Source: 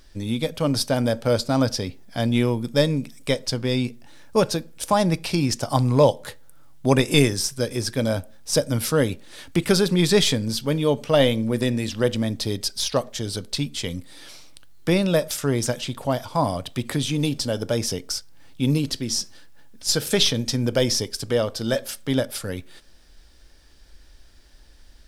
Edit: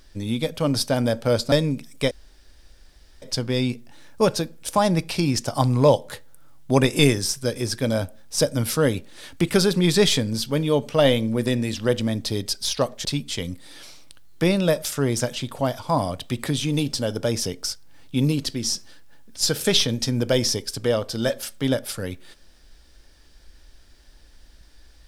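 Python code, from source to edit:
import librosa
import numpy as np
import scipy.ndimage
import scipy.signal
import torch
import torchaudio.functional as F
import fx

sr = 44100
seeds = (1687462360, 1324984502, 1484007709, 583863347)

y = fx.edit(x, sr, fx.cut(start_s=1.52, length_s=1.26),
    fx.insert_room_tone(at_s=3.37, length_s=1.11),
    fx.cut(start_s=13.2, length_s=0.31), tone=tone)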